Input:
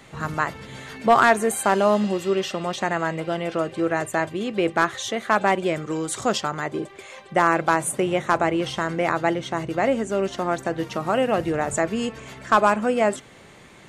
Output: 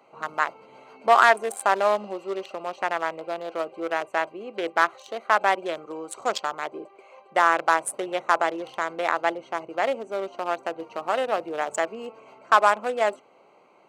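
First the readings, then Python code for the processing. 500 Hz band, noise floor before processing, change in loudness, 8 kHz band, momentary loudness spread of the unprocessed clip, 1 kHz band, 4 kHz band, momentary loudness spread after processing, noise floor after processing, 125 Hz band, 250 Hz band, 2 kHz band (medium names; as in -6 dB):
-3.5 dB, -48 dBFS, -2.0 dB, -7.0 dB, 9 LU, 0.0 dB, -3.5 dB, 13 LU, -57 dBFS, under -20 dB, -12.5 dB, -0.5 dB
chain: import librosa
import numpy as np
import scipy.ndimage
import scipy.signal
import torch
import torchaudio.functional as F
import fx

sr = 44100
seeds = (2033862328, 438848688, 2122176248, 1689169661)

y = fx.wiener(x, sr, points=25)
y = scipy.signal.sosfilt(scipy.signal.butter(2, 630.0, 'highpass', fs=sr, output='sos'), y)
y = y * librosa.db_to_amplitude(1.5)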